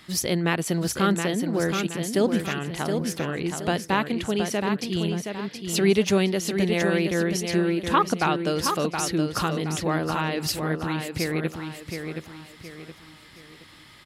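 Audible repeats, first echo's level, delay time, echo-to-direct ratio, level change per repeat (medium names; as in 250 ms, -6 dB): 4, -6.0 dB, 721 ms, -5.5 dB, -8.5 dB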